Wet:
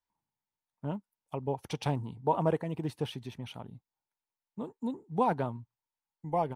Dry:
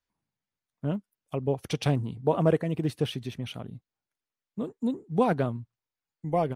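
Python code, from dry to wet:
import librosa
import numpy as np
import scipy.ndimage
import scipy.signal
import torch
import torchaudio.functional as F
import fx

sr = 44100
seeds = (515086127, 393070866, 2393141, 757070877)

y = fx.peak_eq(x, sr, hz=900.0, db=13.0, octaves=0.37)
y = y * librosa.db_to_amplitude(-6.5)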